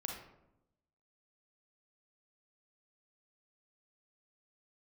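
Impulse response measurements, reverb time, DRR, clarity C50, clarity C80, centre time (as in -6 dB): 0.85 s, 0.5 dB, 2.5 dB, 7.0 dB, 40 ms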